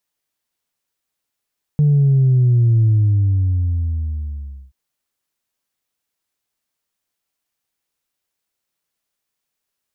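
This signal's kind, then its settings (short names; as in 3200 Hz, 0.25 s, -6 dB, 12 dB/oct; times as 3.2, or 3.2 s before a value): sub drop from 150 Hz, over 2.93 s, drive 0 dB, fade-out 1.88 s, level -10.5 dB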